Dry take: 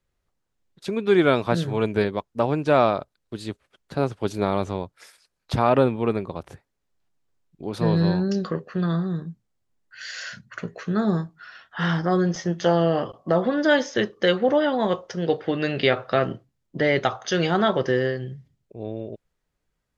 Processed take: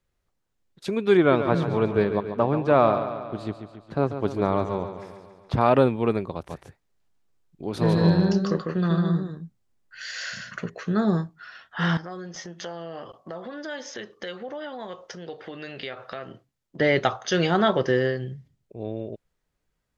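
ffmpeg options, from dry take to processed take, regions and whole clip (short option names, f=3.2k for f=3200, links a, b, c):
-filter_complex "[0:a]asettb=1/sr,asplit=3[a][b][c];[a]atrim=end=1.174[d];[b]atrim=start=1.17:end=5.61,asetpts=PTS-STARTPTS,afade=t=in:d=0.004:c=qsin,afade=t=out:st=4.436:d=0.004:c=qsin,lowpass=f=1.7k:p=1,equalizer=f=1.1k:w=5.6:g=4,aecho=1:1:140|280|420|560|700|840|980:0.316|0.183|0.106|0.0617|0.0358|0.0208|0.012,atrim=end_sample=195804[e];[c]atrim=start=5.606[f];[d][e]acrossfade=d=0.004:c1=hsin:c2=qsin[g];[g][f]acrossfade=d=0.004:c1=qsin:c2=hsin,asettb=1/sr,asplit=3[h][i][j];[h]atrim=end=6.344[k];[i]atrim=start=6.34:end=10.7,asetpts=PTS-STARTPTS,afade=t=in:d=0.004:c=qsin,afade=t=out:st=4.356:d=0.004:c=qsin,volume=11.5dB,asoftclip=hard,volume=-11.5dB,aecho=1:1:149:0.668,atrim=end_sample=192276[l];[j]atrim=start=10.696[m];[k][l]acrossfade=d=0.004:c1=hsin:c2=qsin[n];[n][m]acrossfade=d=0.004:c1=qsin:c2=hsin,asettb=1/sr,asplit=3[o][p][q];[o]atrim=end=11.974[r];[p]atrim=start=11.97:end=16.8,asetpts=PTS-STARTPTS,afade=t=in:d=0.004:c=qsin,afade=t=out:st=4.826:d=0.004:c=qsin,acompressor=threshold=-32dB:ratio=3:attack=3.2:release=140:knee=1:detection=peak,lowshelf=f=420:g=-8[s];[q]atrim=start=16.796[t];[r][s]acrossfade=d=0.004:c1=hsin:c2=qsin[u];[u][t]acrossfade=d=0.004:c1=qsin:c2=hsin"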